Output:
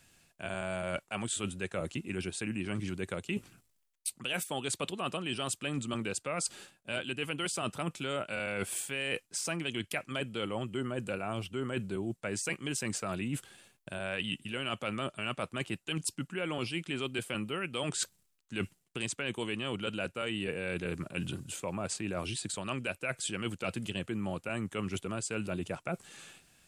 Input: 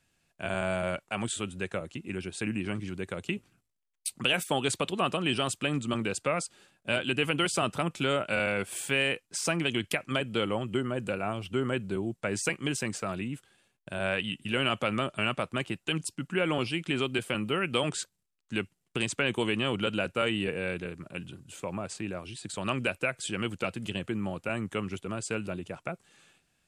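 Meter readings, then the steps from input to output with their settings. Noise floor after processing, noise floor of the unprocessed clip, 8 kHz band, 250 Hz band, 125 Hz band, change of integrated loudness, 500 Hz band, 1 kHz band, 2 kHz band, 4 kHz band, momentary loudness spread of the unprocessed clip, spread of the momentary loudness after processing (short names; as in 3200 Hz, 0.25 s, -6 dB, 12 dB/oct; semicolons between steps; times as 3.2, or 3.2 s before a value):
-74 dBFS, -78 dBFS, 0.0 dB, -4.5 dB, -3.5 dB, -4.5 dB, -5.5 dB, -6.0 dB, -5.5 dB, -5.0 dB, 10 LU, 4 LU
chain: high shelf 5000 Hz +5.5 dB; reverse; compressor 10:1, threshold -39 dBFS, peak gain reduction 19 dB; reverse; gain +7.5 dB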